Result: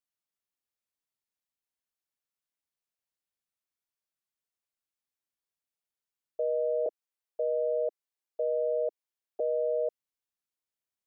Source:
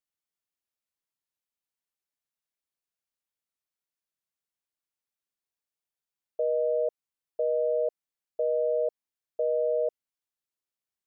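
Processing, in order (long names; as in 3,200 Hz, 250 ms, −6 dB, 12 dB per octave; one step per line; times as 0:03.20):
0:06.86–0:09.40: Butterworth high-pass 310 Hz
level −2.5 dB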